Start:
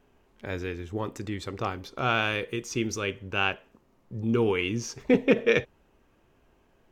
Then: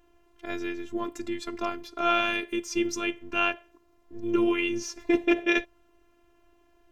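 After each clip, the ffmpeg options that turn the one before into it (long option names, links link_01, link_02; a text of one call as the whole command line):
ffmpeg -i in.wav -af "afftfilt=real='hypot(re,im)*cos(PI*b)':imag='0':win_size=512:overlap=0.75,volume=4dB" out.wav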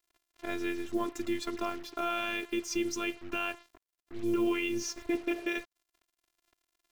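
ffmpeg -i in.wav -af "alimiter=limit=-19.5dB:level=0:latency=1:release=206,acrusher=bits=7:mix=0:aa=0.5" out.wav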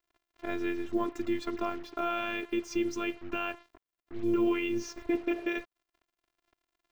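ffmpeg -i in.wav -af "equalizer=frequency=11000:width=0.31:gain=-12.5,volume=2dB" out.wav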